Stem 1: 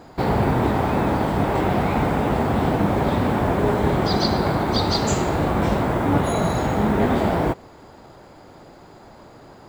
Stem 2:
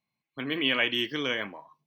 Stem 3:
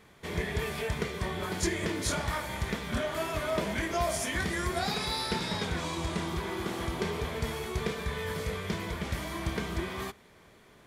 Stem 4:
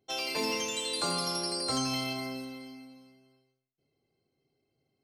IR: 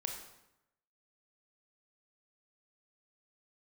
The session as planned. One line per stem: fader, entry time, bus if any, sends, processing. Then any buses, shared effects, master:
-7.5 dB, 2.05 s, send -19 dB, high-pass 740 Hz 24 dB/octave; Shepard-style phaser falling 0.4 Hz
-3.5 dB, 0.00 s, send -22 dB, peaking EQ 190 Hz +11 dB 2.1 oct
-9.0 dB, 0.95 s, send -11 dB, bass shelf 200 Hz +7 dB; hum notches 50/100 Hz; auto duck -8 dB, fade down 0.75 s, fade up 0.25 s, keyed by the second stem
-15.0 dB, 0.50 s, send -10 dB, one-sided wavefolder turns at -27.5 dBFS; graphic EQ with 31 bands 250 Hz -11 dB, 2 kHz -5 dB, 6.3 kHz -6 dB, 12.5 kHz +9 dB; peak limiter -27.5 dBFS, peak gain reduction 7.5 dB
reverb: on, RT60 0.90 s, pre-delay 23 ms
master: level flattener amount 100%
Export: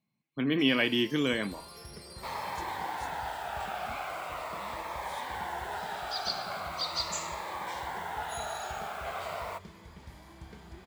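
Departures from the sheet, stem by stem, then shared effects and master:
stem 3 -9.0 dB -> -21.0 dB; master: missing level flattener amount 100%

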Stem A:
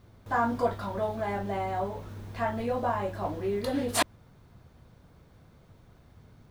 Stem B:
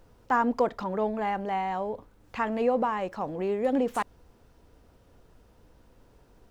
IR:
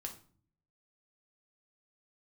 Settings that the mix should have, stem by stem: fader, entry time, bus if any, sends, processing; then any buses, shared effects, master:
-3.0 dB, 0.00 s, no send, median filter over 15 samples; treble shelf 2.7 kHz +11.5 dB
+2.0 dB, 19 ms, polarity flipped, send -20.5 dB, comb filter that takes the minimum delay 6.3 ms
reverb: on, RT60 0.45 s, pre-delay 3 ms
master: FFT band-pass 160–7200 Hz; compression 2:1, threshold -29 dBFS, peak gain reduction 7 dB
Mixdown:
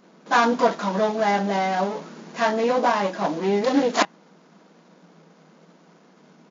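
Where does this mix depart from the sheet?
stem A -3.0 dB -> +7.0 dB; master: missing compression 2:1, threshold -29 dBFS, peak gain reduction 7 dB

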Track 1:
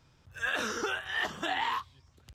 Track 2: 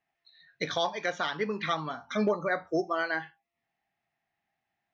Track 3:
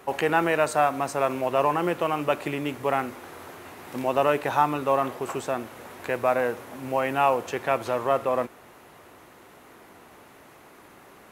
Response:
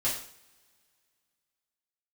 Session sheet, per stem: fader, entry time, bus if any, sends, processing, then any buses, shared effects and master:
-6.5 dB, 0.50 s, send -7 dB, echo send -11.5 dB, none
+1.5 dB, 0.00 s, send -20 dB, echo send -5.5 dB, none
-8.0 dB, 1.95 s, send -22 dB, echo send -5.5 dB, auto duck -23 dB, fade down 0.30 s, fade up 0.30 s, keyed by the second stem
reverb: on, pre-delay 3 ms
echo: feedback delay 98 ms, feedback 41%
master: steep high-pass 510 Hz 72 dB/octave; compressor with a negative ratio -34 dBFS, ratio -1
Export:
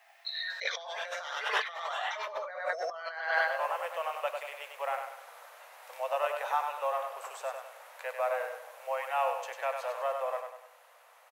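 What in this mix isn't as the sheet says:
stem 1 -6.5 dB -> +1.0 dB; stem 2 +1.5 dB -> +11.5 dB; stem 3 -8.0 dB -> -19.0 dB

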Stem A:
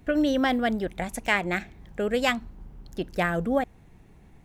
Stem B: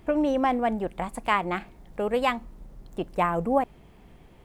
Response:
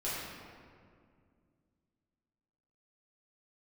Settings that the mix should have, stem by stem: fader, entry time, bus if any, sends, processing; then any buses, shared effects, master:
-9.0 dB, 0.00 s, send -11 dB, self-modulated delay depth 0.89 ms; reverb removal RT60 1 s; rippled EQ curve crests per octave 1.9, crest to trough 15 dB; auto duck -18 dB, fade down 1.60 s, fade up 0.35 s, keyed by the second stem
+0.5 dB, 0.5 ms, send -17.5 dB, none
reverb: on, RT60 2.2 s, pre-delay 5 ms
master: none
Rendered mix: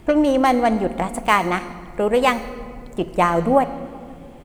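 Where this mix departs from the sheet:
stem B +0.5 dB -> +6.5 dB; master: extra peaking EQ 8 kHz +5 dB 0.42 oct

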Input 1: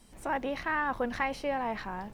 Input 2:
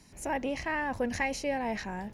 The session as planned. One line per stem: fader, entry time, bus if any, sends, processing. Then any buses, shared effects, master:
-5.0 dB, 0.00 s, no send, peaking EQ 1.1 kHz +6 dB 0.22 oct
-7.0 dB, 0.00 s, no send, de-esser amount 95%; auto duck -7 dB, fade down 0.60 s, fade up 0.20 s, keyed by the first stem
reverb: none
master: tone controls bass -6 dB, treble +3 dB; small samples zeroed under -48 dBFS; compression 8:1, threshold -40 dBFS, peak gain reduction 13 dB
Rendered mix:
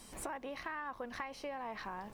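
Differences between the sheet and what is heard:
stem 1 -5.0 dB -> +4.5 dB; master: missing small samples zeroed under -48 dBFS

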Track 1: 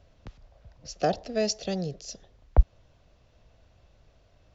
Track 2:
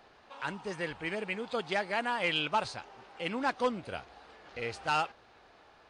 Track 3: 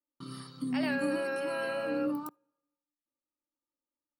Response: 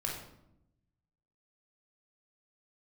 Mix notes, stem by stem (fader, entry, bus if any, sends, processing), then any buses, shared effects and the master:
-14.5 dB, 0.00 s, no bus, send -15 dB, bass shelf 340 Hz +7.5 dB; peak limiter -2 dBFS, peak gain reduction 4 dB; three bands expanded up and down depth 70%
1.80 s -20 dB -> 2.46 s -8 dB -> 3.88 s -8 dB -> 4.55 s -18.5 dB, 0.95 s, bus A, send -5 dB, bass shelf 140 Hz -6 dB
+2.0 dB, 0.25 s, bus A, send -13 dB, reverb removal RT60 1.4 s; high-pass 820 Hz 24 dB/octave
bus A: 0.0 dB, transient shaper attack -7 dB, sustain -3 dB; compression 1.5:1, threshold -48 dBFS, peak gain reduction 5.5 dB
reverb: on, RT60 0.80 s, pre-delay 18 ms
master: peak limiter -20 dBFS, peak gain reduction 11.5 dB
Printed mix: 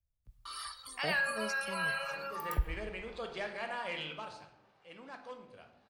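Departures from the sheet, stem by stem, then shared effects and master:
stem 1 -14.5 dB -> -22.5 dB; stem 2: entry 0.95 s -> 1.65 s; stem 3 +2.0 dB -> +10.0 dB

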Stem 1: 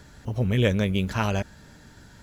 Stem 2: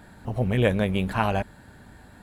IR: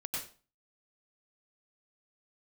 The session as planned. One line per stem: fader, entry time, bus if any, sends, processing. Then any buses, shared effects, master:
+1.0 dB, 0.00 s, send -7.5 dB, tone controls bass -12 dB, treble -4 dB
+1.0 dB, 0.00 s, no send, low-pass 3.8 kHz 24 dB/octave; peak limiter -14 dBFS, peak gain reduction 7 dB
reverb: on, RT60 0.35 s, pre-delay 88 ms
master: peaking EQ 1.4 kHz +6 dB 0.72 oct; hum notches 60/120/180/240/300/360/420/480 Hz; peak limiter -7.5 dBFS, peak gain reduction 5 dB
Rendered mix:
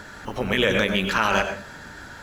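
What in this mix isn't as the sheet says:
stem 1 +1.0 dB -> +8.0 dB; stem 2: polarity flipped

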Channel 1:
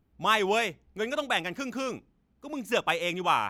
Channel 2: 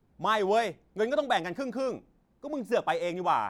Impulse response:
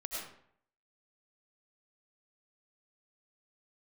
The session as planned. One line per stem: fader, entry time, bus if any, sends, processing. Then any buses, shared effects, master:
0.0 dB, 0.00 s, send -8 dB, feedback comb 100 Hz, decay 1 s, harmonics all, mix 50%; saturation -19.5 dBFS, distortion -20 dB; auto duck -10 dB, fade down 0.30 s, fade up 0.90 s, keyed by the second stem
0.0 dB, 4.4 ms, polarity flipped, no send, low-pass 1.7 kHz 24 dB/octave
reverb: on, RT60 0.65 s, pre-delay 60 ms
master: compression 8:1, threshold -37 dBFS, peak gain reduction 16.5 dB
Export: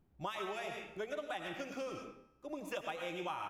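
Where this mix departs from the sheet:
stem 1: missing saturation -19.5 dBFS, distortion -20 dB; stem 2 0.0 dB -> -9.5 dB

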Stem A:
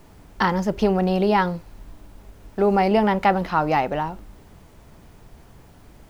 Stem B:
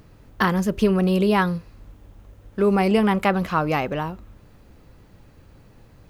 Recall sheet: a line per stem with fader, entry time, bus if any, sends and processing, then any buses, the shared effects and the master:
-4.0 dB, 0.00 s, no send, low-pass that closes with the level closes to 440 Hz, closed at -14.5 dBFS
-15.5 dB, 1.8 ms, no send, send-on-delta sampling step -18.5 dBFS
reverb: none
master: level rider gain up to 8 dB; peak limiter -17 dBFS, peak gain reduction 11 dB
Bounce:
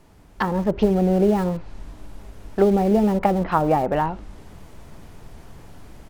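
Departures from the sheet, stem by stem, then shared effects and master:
stem B -15.5 dB -> -22.0 dB; master: missing peak limiter -17 dBFS, peak gain reduction 11 dB

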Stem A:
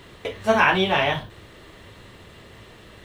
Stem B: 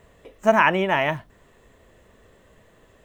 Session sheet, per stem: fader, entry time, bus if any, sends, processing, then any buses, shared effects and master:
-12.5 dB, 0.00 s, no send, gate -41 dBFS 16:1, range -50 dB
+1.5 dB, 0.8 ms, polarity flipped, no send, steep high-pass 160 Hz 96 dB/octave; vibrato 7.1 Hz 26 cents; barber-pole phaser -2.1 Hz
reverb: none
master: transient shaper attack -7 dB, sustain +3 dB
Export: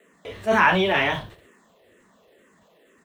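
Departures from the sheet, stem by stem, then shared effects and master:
stem A -12.5 dB -> -3.5 dB; stem B: polarity flipped

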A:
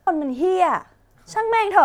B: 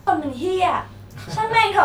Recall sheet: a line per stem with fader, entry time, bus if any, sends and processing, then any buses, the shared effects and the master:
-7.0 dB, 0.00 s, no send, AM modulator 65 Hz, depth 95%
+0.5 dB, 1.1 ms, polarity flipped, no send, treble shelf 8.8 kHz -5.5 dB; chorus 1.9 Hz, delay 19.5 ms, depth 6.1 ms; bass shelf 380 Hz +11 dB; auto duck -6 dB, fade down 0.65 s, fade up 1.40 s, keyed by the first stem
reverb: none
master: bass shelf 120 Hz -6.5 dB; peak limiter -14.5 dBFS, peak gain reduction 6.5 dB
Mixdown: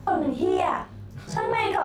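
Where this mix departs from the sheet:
stem A -7.0 dB -> +1.0 dB; stem B: polarity flipped

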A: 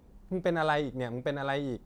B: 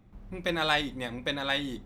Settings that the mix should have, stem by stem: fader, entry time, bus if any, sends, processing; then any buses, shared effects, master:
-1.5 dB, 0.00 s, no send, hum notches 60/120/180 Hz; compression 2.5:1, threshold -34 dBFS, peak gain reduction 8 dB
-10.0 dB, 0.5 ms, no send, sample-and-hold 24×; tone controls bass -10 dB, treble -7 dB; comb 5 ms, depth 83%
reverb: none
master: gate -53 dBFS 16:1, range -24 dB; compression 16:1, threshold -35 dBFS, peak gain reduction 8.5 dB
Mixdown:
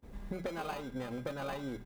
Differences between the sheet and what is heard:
stem A -1.5 dB -> +6.0 dB; stem B -10.0 dB -> 0.0 dB

